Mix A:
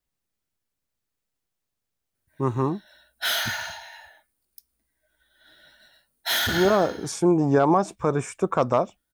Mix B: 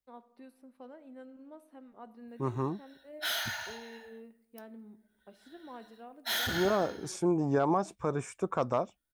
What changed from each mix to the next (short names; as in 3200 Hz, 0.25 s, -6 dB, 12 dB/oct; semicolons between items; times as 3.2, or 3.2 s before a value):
first voice: unmuted; second voice -8.5 dB; background -8.0 dB; reverb: on, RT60 0.95 s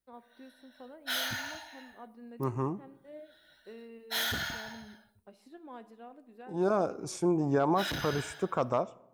second voice: send on; background: entry -2.15 s